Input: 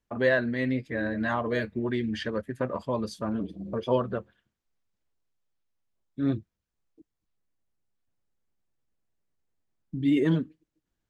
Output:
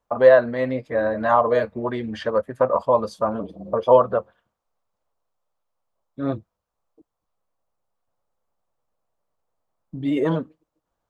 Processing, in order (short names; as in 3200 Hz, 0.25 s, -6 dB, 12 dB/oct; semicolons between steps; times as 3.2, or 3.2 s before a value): band shelf 790 Hz +13.5 dB